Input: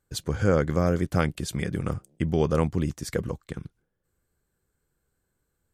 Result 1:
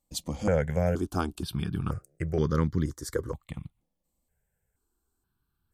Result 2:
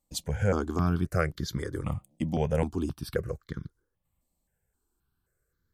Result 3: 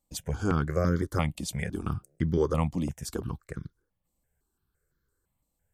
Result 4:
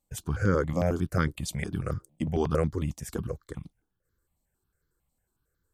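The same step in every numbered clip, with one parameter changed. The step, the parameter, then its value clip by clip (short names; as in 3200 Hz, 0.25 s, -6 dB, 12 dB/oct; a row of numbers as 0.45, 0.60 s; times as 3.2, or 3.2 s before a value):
step phaser, rate: 2.1, 3.8, 5.9, 11 Hz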